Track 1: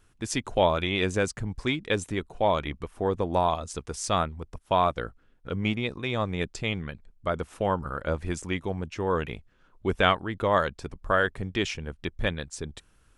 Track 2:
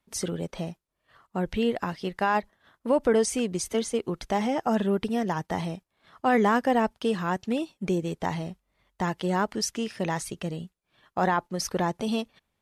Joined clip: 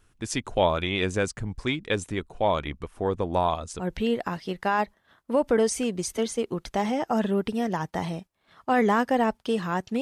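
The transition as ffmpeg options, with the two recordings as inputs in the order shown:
-filter_complex "[0:a]apad=whole_dur=10.01,atrim=end=10.01,atrim=end=3.88,asetpts=PTS-STARTPTS[a];[1:a]atrim=start=1.3:end=7.57,asetpts=PTS-STARTPTS[b];[a][b]acrossfade=d=0.14:c1=tri:c2=tri"

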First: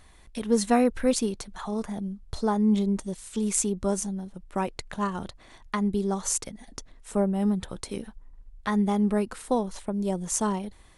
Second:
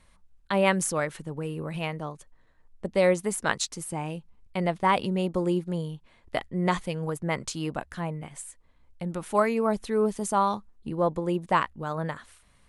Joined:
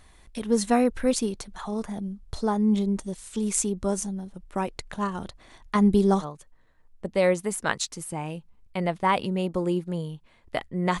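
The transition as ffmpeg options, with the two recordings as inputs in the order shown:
-filter_complex "[0:a]asettb=1/sr,asplit=3[a][b][c];[a]atrim=end=5.754[d];[b]atrim=start=5.75:end=6.25,asetpts=PTS-STARTPTS,afade=t=in:d=0.004:c=qsin,afade=t=out:st=0.496:d=0.004:c=qsin,acontrast=77[e];[c]atrim=start=6.246[f];[d][e]acrossfade=d=0.004:c1=hsin:c2=qsin[g];[g][f]acrossfade=d=0.004:c1=qsin:c2=hsin,apad=whole_dur=11,atrim=end=11,atrim=end=6.25,asetpts=PTS-STARTPTS[h];[1:a]atrim=start=1.99:end=6.8,asetpts=PTS-STARTPTS[i];[h][i]acrossfade=d=0.06:c1=tri:c2=tri"

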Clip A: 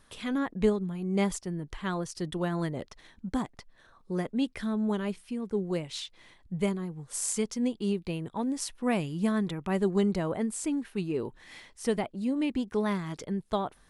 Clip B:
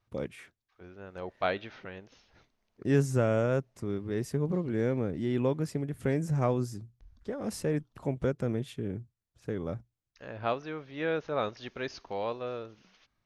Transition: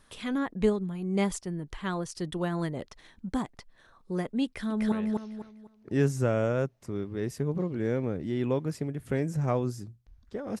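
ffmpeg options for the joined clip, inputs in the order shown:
-filter_complex "[0:a]apad=whole_dur=10.6,atrim=end=10.6,atrim=end=4.922[a];[1:a]atrim=start=1.858:end=7.54[b];[a][b]acrossfade=d=0.004:c1=hsin:c2=hsin,asplit=2[c][d];[d]afade=t=in:st=4.45:d=0.01,afade=t=out:st=4.92:d=0.01,aecho=0:1:250|500|750|1000:0.891251|0.267375|0.0802126|0.0240638[e];[c][e]amix=inputs=2:normalize=0"

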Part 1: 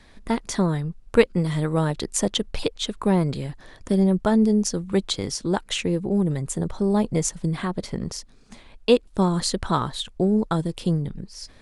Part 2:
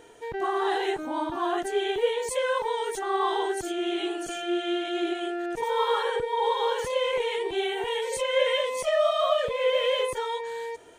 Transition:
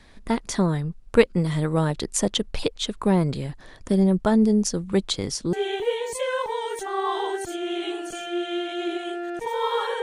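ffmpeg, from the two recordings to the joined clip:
-filter_complex "[0:a]apad=whole_dur=10.02,atrim=end=10.02,atrim=end=5.532[a];[1:a]atrim=start=1.688:end=6.18[b];[a][b]acrossfade=d=0.004:c1=hsin:c2=hsin"

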